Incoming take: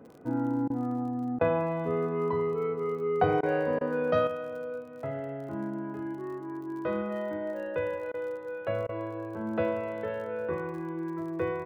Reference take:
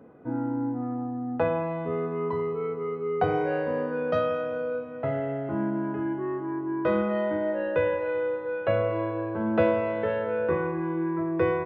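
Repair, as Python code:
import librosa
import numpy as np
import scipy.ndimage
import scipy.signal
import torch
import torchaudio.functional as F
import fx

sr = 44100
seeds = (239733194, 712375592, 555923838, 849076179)

y = fx.fix_declick_ar(x, sr, threshold=6.5)
y = fx.fix_interpolate(y, sr, at_s=(0.68, 1.39, 3.41, 3.79, 8.12, 8.87), length_ms=19.0)
y = fx.gain(y, sr, db=fx.steps((0.0, 0.0), (4.27, 6.5)))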